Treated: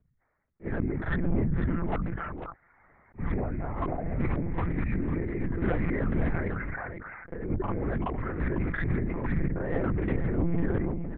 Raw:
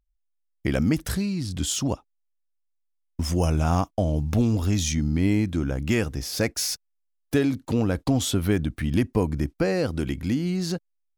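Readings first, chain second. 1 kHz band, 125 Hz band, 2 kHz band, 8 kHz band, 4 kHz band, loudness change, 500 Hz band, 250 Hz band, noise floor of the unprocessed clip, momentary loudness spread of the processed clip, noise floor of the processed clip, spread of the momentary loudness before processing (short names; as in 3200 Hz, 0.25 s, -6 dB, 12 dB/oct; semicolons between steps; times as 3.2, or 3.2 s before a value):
-2.5 dB, -5.0 dB, -2.0 dB, under -40 dB, under -25 dB, -5.5 dB, -5.5 dB, -6.0 dB, -74 dBFS, 9 LU, -69 dBFS, 6 LU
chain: rattling part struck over -24 dBFS, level -22 dBFS; steep low-pass 2100 Hz 96 dB/oct; reverb removal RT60 0.6 s; HPF 50 Hz 24 dB/oct; negative-ratio compressor -29 dBFS, ratio -0.5; whisperiser; soft clip -25.5 dBFS, distortion -11 dB; notch comb 280 Hz; on a send: echo 0.492 s -9.5 dB; on the sum: monotone LPC vocoder at 8 kHz 170 Hz; pre-echo 42 ms -16 dB; sustainer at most 25 dB/s; gain +4.5 dB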